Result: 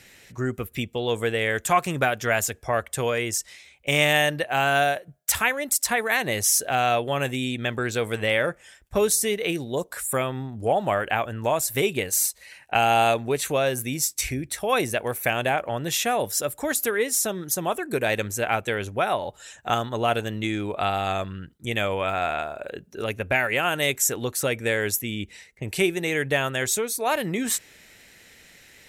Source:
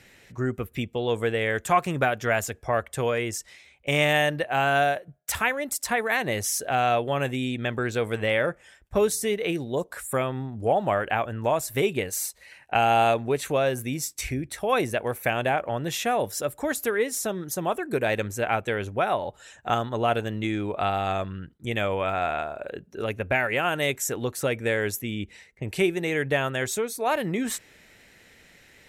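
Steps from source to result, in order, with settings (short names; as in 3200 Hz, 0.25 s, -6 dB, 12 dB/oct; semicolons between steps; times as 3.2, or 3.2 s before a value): high shelf 3100 Hz +8 dB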